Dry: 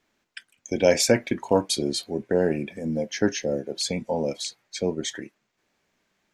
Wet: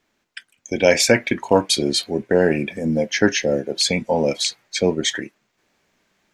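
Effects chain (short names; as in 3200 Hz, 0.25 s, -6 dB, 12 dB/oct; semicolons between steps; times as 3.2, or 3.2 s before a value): dynamic EQ 2200 Hz, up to +7 dB, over -41 dBFS, Q 0.72; in parallel at -0.5 dB: vocal rider 0.5 s; on the sum: gain -1 dB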